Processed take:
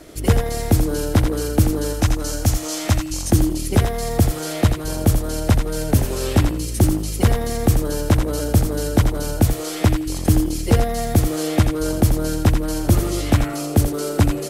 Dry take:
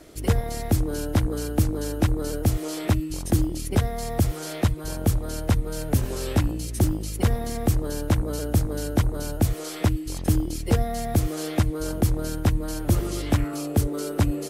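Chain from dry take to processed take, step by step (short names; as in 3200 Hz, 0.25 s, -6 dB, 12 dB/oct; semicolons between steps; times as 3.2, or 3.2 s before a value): 1.93–3.32 fifteen-band EQ 160 Hz -7 dB, 400 Hz -10 dB, 6300 Hz +7 dB; on a send: thinning echo 84 ms, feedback 21%, level -6 dB; on the sum: gain +5.5 dB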